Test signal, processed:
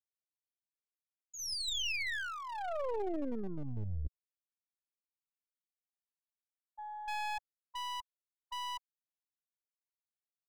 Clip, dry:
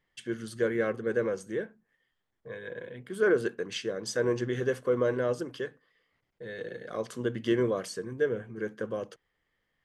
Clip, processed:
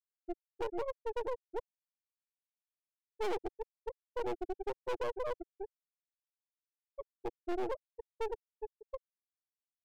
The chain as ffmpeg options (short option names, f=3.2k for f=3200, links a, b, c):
-af "afftfilt=real='re*gte(hypot(re,im),0.282)':imag='im*gte(hypot(re,im),0.282)':win_size=1024:overlap=0.75,volume=29.5dB,asoftclip=hard,volume=-29.5dB,equalizer=f=1.1k:w=1.4:g=-9,aeval=exprs='0.0376*(cos(1*acos(clip(val(0)/0.0376,-1,1)))-cos(1*PI/2))+0.0168*(cos(2*acos(clip(val(0)/0.0376,-1,1)))-cos(2*PI/2))+0.00075*(cos(8*acos(clip(val(0)/0.0376,-1,1)))-cos(8*PI/2))':c=same,equalizer=f=160:w=1.3:g=-10.5,volume=-2dB"